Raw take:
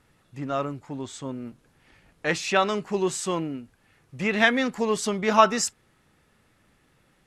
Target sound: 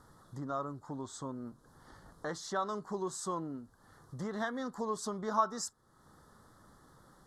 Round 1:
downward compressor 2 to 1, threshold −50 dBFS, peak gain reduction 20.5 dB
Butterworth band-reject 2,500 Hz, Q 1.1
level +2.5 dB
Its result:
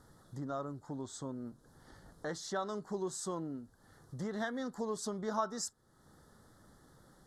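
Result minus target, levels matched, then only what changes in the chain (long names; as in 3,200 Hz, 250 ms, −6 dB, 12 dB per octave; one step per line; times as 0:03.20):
1,000 Hz band −3.5 dB
add after Butterworth band-reject: parametric band 1,100 Hz +7.5 dB 0.6 octaves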